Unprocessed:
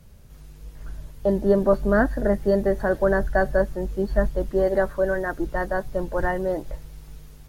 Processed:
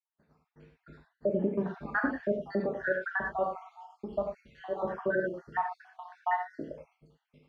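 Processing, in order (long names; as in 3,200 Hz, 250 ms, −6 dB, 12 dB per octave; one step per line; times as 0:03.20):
time-frequency cells dropped at random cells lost 71%
Chebyshev band-pass filter 210–2,400 Hz, order 2
downward expander −55 dBFS
0:02.66–0:04.85: parametric band 230 Hz −10 dB 2.8 octaves
brickwall limiter −20 dBFS, peak gain reduction 9 dB
reverb whose tail is shaped and stops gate 130 ms flat, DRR 1 dB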